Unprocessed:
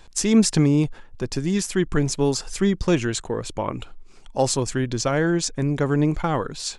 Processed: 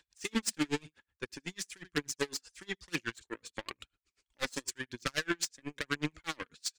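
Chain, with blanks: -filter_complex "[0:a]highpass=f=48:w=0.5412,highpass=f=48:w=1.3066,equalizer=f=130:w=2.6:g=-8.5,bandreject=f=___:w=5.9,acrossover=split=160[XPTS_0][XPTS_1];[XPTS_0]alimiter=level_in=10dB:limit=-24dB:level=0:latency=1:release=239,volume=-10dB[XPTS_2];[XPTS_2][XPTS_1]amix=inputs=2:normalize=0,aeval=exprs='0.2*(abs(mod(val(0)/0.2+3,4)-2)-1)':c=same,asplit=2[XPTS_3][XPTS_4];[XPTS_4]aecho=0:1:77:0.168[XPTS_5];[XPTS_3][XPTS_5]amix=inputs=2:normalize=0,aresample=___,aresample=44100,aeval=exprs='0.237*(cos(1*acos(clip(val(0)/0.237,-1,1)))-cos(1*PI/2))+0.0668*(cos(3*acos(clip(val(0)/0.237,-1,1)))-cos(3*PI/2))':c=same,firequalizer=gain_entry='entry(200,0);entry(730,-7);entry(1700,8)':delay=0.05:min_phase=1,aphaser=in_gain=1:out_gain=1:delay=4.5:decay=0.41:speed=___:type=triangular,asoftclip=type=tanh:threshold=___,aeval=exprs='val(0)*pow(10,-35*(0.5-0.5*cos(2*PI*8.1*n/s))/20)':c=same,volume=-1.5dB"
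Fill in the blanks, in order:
210, 22050, 1, -18dB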